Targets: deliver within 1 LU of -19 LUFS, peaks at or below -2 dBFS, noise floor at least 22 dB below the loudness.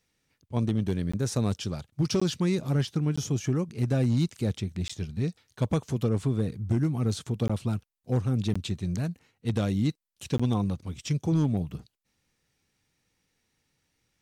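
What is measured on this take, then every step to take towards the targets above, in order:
clipped samples 0.5%; clipping level -18.0 dBFS; dropouts 7; longest dropout 15 ms; loudness -29.0 LUFS; peak level -18.0 dBFS; loudness target -19.0 LUFS
-> clip repair -18 dBFS; interpolate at 1.12/2.20/3.16/4.88/7.48/8.54/10.38 s, 15 ms; trim +10 dB

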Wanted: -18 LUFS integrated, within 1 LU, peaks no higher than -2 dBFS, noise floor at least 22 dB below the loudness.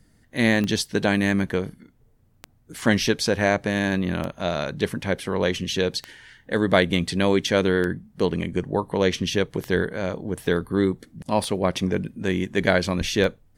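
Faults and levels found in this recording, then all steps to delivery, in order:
clicks found 8; loudness -23.5 LUFS; peak level -2.5 dBFS; loudness target -18.0 LUFS
-> de-click; trim +5.5 dB; peak limiter -2 dBFS

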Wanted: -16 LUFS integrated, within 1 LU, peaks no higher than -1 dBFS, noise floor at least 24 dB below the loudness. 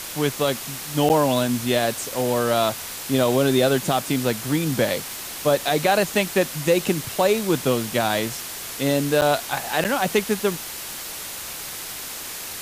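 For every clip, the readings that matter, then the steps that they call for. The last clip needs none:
dropouts 3; longest dropout 8.7 ms; noise floor -34 dBFS; noise floor target -47 dBFS; loudness -22.5 LUFS; peak level -7.0 dBFS; loudness target -16.0 LUFS
-> interpolate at 1.09/9.21/9.84 s, 8.7 ms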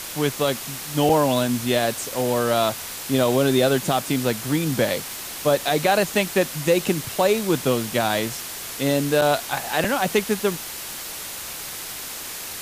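dropouts 0; noise floor -34 dBFS; noise floor target -47 dBFS
-> noise reduction 13 dB, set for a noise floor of -34 dBFS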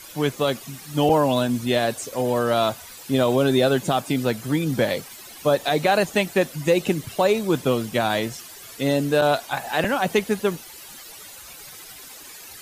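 noise floor -42 dBFS; noise floor target -47 dBFS
-> noise reduction 6 dB, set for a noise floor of -42 dBFS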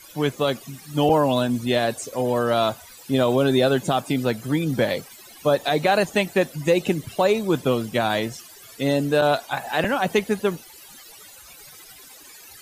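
noise floor -46 dBFS; noise floor target -47 dBFS
-> noise reduction 6 dB, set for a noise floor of -46 dBFS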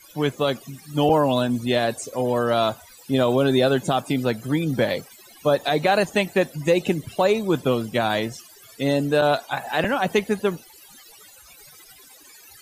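noise floor -49 dBFS; loudness -22.5 LUFS; peak level -8.0 dBFS; loudness target -16.0 LUFS
-> trim +6.5 dB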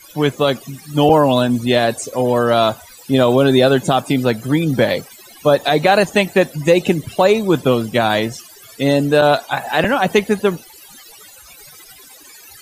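loudness -16.0 LUFS; peak level -1.5 dBFS; noise floor -42 dBFS

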